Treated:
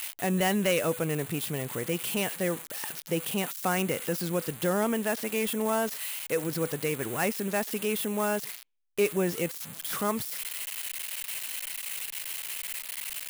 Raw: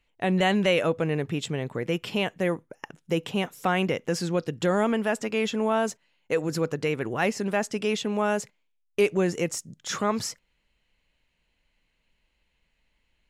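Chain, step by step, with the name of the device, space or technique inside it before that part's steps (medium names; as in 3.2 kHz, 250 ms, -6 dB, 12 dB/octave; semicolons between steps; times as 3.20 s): budget class-D amplifier (dead-time distortion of 0.082 ms; zero-crossing glitches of -17 dBFS); trim -3.5 dB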